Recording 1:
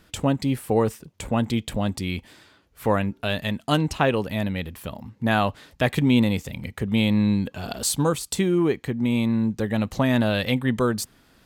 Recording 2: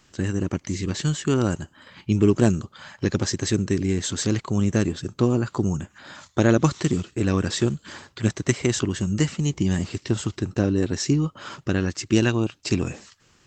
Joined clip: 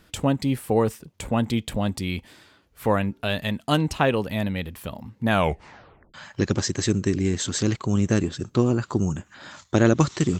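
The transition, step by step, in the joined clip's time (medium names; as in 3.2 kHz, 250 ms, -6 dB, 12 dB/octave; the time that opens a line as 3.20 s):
recording 1
5.30 s: tape stop 0.84 s
6.14 s: go over to recording 2 from 2.78 s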